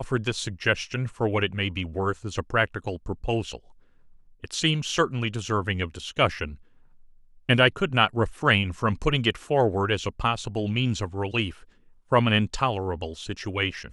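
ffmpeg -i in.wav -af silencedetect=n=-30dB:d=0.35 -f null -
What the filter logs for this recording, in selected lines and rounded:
silence_start: 3.55
silence_end: 4.44 | silence_duration: 0.89
silence_start: 6.47
silence_end: 7.49 | silence_duration: 1.02
silence_start: 11.50
silence_end: 12.12 | silence_duration: 0.61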